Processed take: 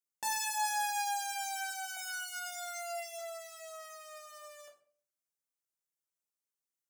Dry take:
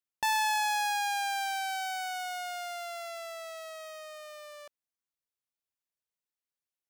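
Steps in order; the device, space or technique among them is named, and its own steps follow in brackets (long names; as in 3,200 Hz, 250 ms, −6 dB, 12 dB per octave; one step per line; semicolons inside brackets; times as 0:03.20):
budget condenser microphone (high-pass filter 120 Hz; high shelf with overshoot 5,100 Hz +6.5 dB, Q 1.5)
0:01.96–0:03.19: comb filter 4.8 ms, depth 89%
rectangular room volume 51 cubic metres, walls mixed, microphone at 0.75 metres
level −9 dB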